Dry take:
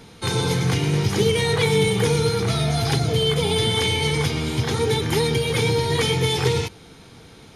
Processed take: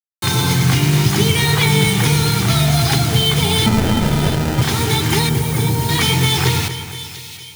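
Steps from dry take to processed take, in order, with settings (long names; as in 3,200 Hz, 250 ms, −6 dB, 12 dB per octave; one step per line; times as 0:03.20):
mains-hum notches 50/100 Hz
bit reduction 5 bits
parametric band 480 Hz −14 dB 0.41 octaves
0:03.66–0:04.62: sample-rate reduction 1,100 Hz, jitter 0%
0:05.29–0:05.89: parametric band 3,200 Hz −14 dB 1.9 octaves
echo with a time of its own for lows and highs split 2,400 Hz, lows 237 ms, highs 689 ms, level −11.5 dB
level +6.5 dB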